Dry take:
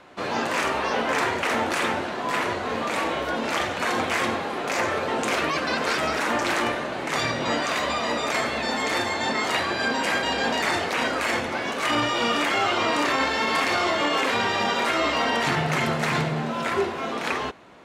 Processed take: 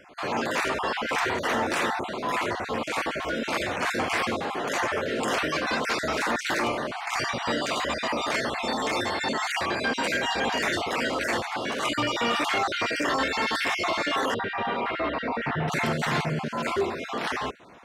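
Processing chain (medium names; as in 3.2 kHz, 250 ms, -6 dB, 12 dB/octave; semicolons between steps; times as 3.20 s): random holes in the spectrogram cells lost 29%; saturation -16.5 dBFS, distortion -21 dB; 14.34–15.68 s: distance through air 430 m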